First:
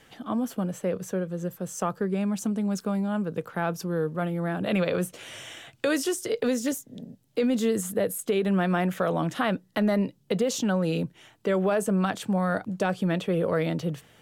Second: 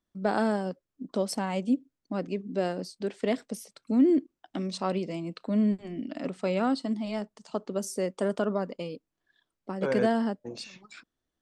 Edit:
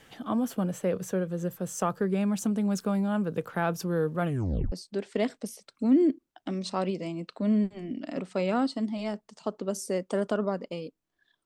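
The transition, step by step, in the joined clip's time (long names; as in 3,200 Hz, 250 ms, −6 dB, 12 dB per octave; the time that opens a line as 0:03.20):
first
0:04.25: tape stop 0.47 s
0:04.72: continue with second from 0:02.80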